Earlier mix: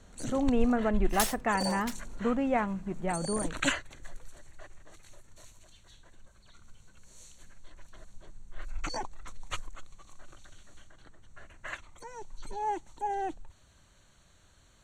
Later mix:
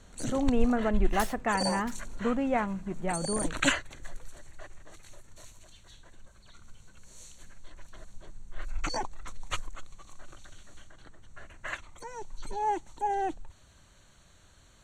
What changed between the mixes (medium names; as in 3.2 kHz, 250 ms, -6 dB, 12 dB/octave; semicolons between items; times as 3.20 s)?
first sound +3.0 dB; second sound -9.0 dB